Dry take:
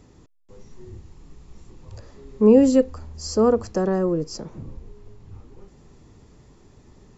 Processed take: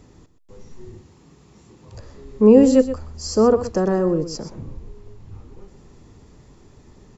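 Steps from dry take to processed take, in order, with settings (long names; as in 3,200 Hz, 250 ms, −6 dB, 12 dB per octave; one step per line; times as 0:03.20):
0:00.91–0:01.95: high-pass filter 120 Hz 12 dB per octave
single-tap delay 124 ms −12.5 dB
level +2.5 dB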